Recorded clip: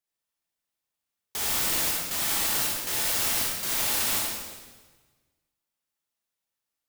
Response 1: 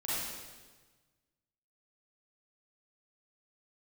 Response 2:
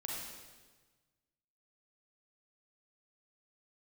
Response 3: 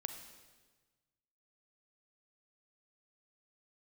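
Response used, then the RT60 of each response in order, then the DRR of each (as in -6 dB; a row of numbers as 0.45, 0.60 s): 2; 1.3, 1.3, 1.3 s; -10.0, -3.0, 7.0 dB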